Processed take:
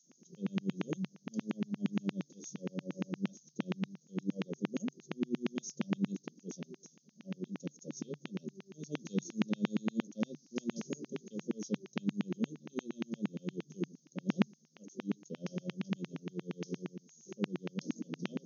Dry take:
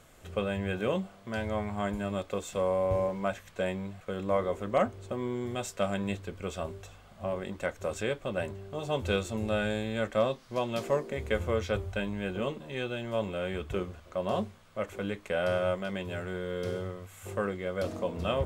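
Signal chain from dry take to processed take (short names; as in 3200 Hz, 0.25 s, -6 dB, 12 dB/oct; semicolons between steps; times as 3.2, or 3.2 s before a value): inverse Chebyshev band-stop 830–2300 Hz, stop band 80 dB; LFO high-pass saw down 8.6 Hz 280–2800 Hz; FFT band-pass 140–6700 Hz; gain +15.5 dB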